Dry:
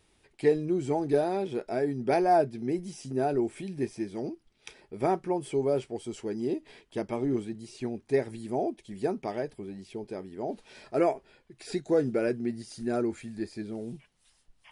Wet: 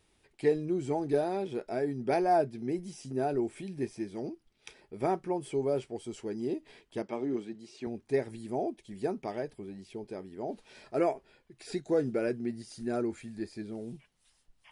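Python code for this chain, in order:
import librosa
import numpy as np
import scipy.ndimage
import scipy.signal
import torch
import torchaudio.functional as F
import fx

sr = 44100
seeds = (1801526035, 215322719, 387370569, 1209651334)

y = fx.bandpass_edges(x, sr, low_hz=210.0, high_hz=6500.0, at=(7.02, 7.87))
y = y * 10.0 ** (-3.0 / 20.0)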